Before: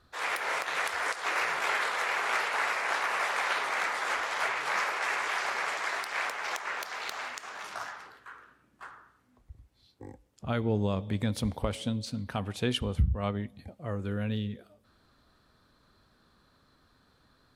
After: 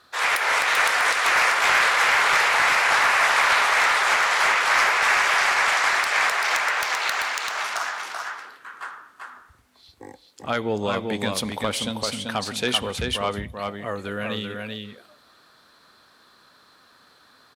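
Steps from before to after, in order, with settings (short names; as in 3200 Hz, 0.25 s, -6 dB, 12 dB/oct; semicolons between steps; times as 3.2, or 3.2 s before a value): HPF 830 Hz 6 dB/oct; sine folder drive 5 dB, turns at -17 dBFS; on a send: echo 0.388 s -4 dB; on the sum: gain +3.5 dB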